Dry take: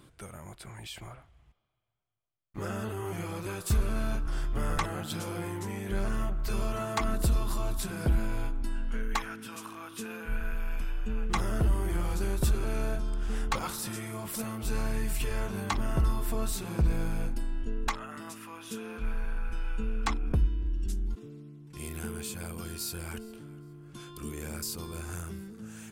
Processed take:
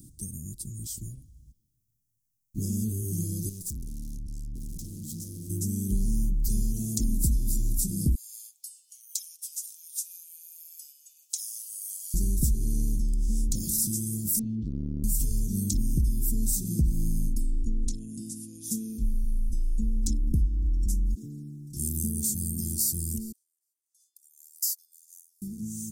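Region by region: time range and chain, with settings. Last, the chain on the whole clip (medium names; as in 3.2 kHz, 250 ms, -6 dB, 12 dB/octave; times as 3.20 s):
3.49–5.50 s: treble shelf 8 kHz -6.5 dB + valve stage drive 42 dB, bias 0.65
8.15–12.14 s: Chebyshev high-pass 830 Hz, order 6 + comb 7 ms, depth 37%
14.39–15.04 s: low-pass 3.1 kHz 24 dB/octave + transformer saturation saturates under 570 Hz
17.69–18.64 s: steep low-pass 11 kHz 48 dB/octave + dynamic bell 6.8 kHz, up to -6 dB, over -55 dBFS, Q 0.97
23.32–25.42 s: Bessel high-pass 1.1 kHz, order 8 + dynamic bell 8.7 kHz, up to -6 dB, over -54 dBFS, Q 2.7 + upward expansion 2.5:1, over -51 dBFS
whole clip: Chebyshev band-stop 260–5900 Hz, order 3; treble shelf 6.7 kHz +8.5 dB; compression 3:1, threshold -31 dBFS; trim +8.5 dB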